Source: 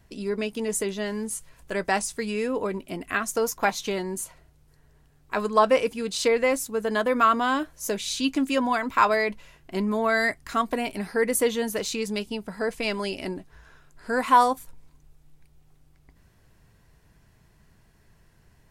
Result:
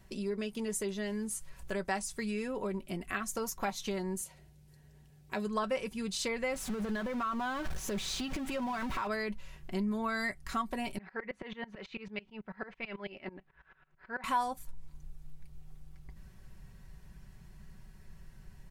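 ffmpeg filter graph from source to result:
-filter_complex "[0:a]asettb=1/sr,asplit=3[s0][s1][s2];[s0]atrim=end=4.214[s3];[s1]atrim=start=4.21:end=5.47,asetpts=PTS-STARTPTS,afade=t=in:d=0.004:c=qsin,afade=t=out:st=1.256:d=0.004:c=qsin,highpass=89,equalizer=f=1200:w=2.1:g=-10[s4];[s2]atrim=start=5.466[s5];[s3][s4]acrossfade=d=0.004:c1=hsin:c2=qsin[s6];[s6][s5]acrossfade=d=0.004:c1=qsin:c2=hsin,asettb=1/sr,asplit=3[s7][s8][s9];[s7]atrim=end=6.544[s10];[s8]atrim=start=6.54:end=9.07,asetpts=PTS-STARTPTS,afade=t=in:d=0.004:c=qsin,afade=t=out:st=2.526:d=0.004:c=qsin,aeval=exprs='val(0)+0.5*0.0473*sgn(val(0))':c=same,lowpass=f=3500:p=1,acompressor=threshold=0.0562:ratio=2.5:attack=3.2:release=140:knee=1:detection=peak[s11];[s9]atrim=start=9.066[s12];[s10][s11]acrossfade=d=0.004:c1=hsin:c2=qsin[s13];[s13][s12]acrossfade=d=0.004:c1=qsin:c2=hsin,asettb=1/sr,asplit=3[s14][s15][s16];[s14]atrim=end=10.984[s17];[s15]atrim=start=10.98:end=14.24,asetpts=PTS-STARTPTS,afade=t=in:d=0.004:c=qsin,afade=t=out:st=3.256:d=0.004:c=qsin,lowpass=f=2400:w=0.5412,lowpass=f=2400:w=1.3066,aemphasis=mode=production:type=riaa,aeval=exprs='val(0)*pow(10,-24*if(lt(mod(-9.1*n/s,1),2*abs(-9.1)/1000),1-mod(-9.1*n/s,1)/(2*abs(-9.1)/1000),(mod(-9.1*n/s,1)-2*abs(-9.1)/1000)/(1-2*abs(-9.1)/1000))/20)':c=same[s18];[s16]atrim=start=14.236[s19];[s17][s18]acrossfade=d=0.004:c1=hsin:c2=qsin[s20];[s20][s19]acrossfade=d=0.004:c1=qsin:c2=hsin,aecho=1:1:5.3:0.5,asubboost=boost=2:cutoff=210,acompressor=threshold=0.0126:ratio=2,volume=0.891"

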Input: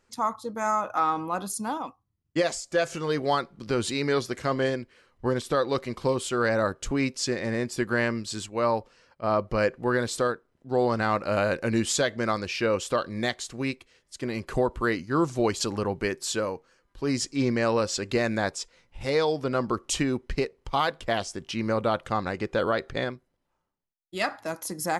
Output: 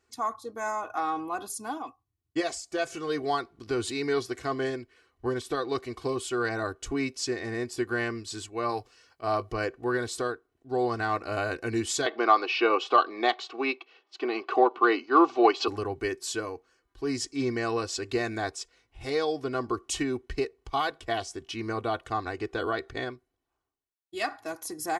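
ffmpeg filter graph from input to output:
-filter_complex "[0:a]asettb=1/sr,asplit=3[s0][s1][s2];[s0]atrim=end=8.694[s3];[s1]atrim=start=8.69:end=9.52,asetpts=PTS-STARTPTS,afade=t=in:d=0.004:c=qsin,afade=t=out:st=0.826:d=0.004:c=qsin,highshelf=f=2800:g=8.5,bandreject=f=60:t=h:w=6,bandreject=f=120:t=h:w=6,bandreject=f=180:t=h:w=6,asplit=2[s4][s5];[s5]adelay=20,volume=0.211[s6];[s4][s6]amix=inputs=2:normalize=0,atrim=end_sample=36603[s7];[s2]atrim=start=9.516[s8];[s3][s7]acrossfade=d=0.004:c1=hsin:c2=qsin[s9];[s9][s8]acrossfade=d=0.004:c1=qsin:c2=hsin,asettb=1/sr,asplit=3[s10][s11][s12];[s10]atrim=end=12.064[s13];[s11]atrim=start=12.06:end=15.68,asetpts=PTS-STARTPTS,afade=t=in:d=0.004:c=qsin,afade=t=out:st=3.616:d=0.004:c=qsin,highpass=f=300:w=0.5412,highpass=f=300:w=1.3066,equalizer=f=820:t=q:w=4:g=9,equalizer=f=1200:t=q:w=4:g=7,equalizer=f=1800:t=q:w=4:g=-5,equalizer=f=2700:t=q:w=4:g=5,lowpass=f=4300:w=0.5412,lowpass=f=4300:w=1.3066,acontrast=41[s14];[s12]atrim=start=15.676[s15];[s13][s14]acrossfade=d=0.004:c1=hsin:c2=qsin[s16];[s16][s15]acrossfade=d=0.004:c1=qsin:c2=hsin,highpass=43,aecho=1:1:2.7:0.81,volume=0.531"

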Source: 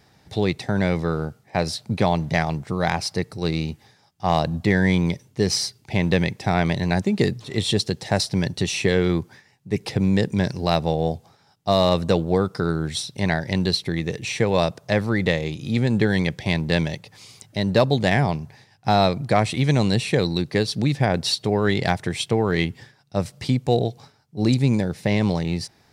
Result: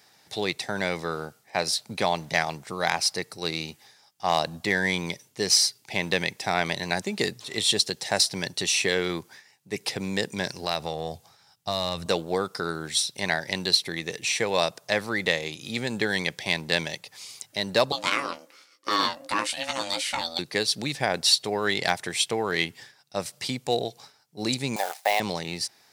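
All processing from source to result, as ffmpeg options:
-filter_complex "[0:a]asettb=1/sr,asplit=3[s0][s1][s2];[s0]atrim=end=10.454[s3];[s1]atrim=start=10.45:end=12.06,asetpts=PTS-STARTPTS,afade=t=in:d=0.004:c=qsin,afade=t=out:st=1.606:d=0.004:c=qsin,asubboost=boost=11.5:cutoff=140,acompressor=threshold=0.126:ratio=4:attack=3.2:release=140:knee=1:detection=peak[s4];[s2]atrim=start=12.056[s5];[s3][s4]acrossfade=d=0.004:c1=hsin:c2=qsin[s6];[s6][s5]acrossfade=d=0.004:c1=qsin:c2=hsin,asettb=1/sr,asplit=3[s7][s8][s9];[s7]atrim=end=17.924[s10];[s8]atrim=start=17.92:end=20.39,asetpts=PTS-STARTPTS,afade=t=in:d=0.004:c=qsin,afade=t=out:st=2.466:d=0.004:c=qsin,equalizer=f=180:t=o:w=2.2:g=-9,aeval=exprs='val(0)*sin(2*PI*410*n/s)':c=same,asplit=2[s11][s12];[s12]adelay=17,volume=0.398[s13];[s11][s13]amix=inputs=2:normalize=0,atrim=end_sample=108927[s14];[s9]atrim=start=20.386[s15];[s10][s14]acrossfade=d=0.004:c1=hsin:c2=qsin[s16];[s16][s15]acrossfade=d=0.004:c1=qsin:c2=hsin,asettb=1/sr,asplit=3[s17][s18][s19];[s17]atrim=end=24.764[s20];[s18]atrim=start=24.76:end=25.2,asetpts=PTS-STARTPTS,afade=t=in:d=0.004:c=qsin,afade=t=out:st=0.436:d=0.004:c=qsin,agate=range=0.0224:threshold=0.0158:ratio=3:release=100:detection=peak,acrusher=bits=7:dc=4:mix=0:aa=0.000001,highpass=f=750:t=q:w=6.5[s21];[s19]atrim=start=25.196[s22];[s20][s21]acrossfade=d=0.004:c1=hsin:c2=qsin[s23];[s23][s22]acrossfade=d=0.004:c1=qsin:c2=hsin,highpass=f=750:p=1,highshelf=f=4800:g=7.5"

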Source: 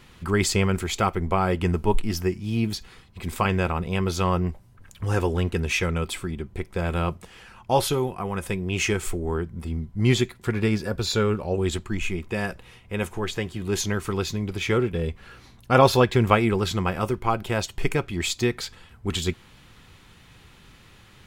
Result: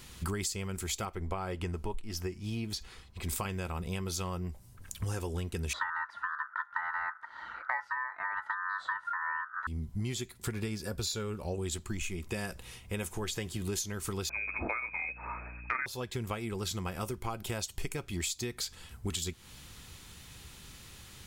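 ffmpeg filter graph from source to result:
-filter_complex "[0:a]asettb=1/sr,asplit=3[s0][s1][s2];[s0]atrim=end=1.054[s3];[s1]atrim=start=1.05:end=3.29,asetpts=PTS-STARTPTS,afade=t=in:d=0.004:c=qsin,afade=t=out:st=2.236:d=0.004:c=qsin,lowpass=f=3000:p=1,equalizer=f=160:t=o:w=1.8:g=-5.5[s4];[s2]atrim=start=3.286[s5];[s3][s4]acrossfade=d=0.004:c1=hsin:c2=qsin[s6];[s6][s5]acrossfade=d=0.004:c1=qsin:c2=hsin,asettb=1/sr,asplit=3[s7][s8][s9];[s7]atrim=end=5.734[s10];[s8]atrim=start=5.73:end=9.67,asetpts=PTS-STARTPTS,afade=t=in:d=0.004:c=qsin,afade=t=out:st=3.936:d=0.004:c=qsin,lowpass=1700,lowshelf=f=740:t=q:w=3:g=13,aeval=exprs='val(0)*sin(2*PI*1400*n/s)':c=same[s11];[s9]atrim=start=9.666[s12];[s10][s11]acrossfade=d=0.004:c1=hsin:c2=qsin[s13];[s13][s12]acrossfade=d=0.004:c1=qsin:c2=hsin,asettb=1/sr,asplit=3[s14][s15][s16];[s14]atrim=end=14.294[s17];[s15]atrim=start=14.29:end=15.86,asetpts=PTS-STARTPTS,afade=t=in:d=0.004:c=qsin,afade=t=out:st=1.566:d=0.004:c=qsin,equalizer=f=1600:w=0.58:g=12,lowpass=f=2200:t=q:w=0.5098,lowpass=f=2200:t=q:w=0.6013,lowpass=f=2200:t=q:w=0.9,lowpass=f=2200:t=q:w=2.563,afreqshift=-2600,aeval=exprs='val(0)+0.00447*(sin(2*PI*60*n/s)+sin(2*PI*2*60*n/s)/2+sin(2*PI*3*60*n/s)/3+sin(2*PI*4*60*n/s)/4+sin(2*PI*5*60*n/s)/5)':c=same[s18];[s16]atrim=start=15.856[s19];[s17][s18]acrossfade=d=0.004:c1=hsin:c2=qsin[s20];[s20][s19]acrossfade=d=0.004:c1=qsin:c2=hsin,bass=f=250:g=1,treble=f=4000:g=13,acompressor=threshold=0.0355:ratio=12,equalizer=f=66:w=3.1:g=7,volume=0.708"

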